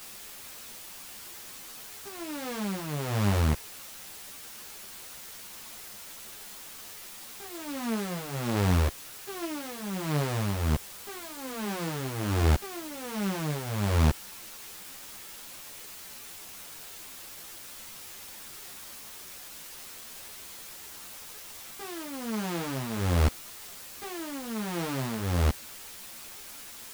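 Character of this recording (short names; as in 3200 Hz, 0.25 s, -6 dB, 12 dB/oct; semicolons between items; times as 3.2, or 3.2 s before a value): tremolo triangle 1.3 Hz, depth 60%; a quantiser's noise floor 8-bit, dither triangular; a shimmering, thickened sound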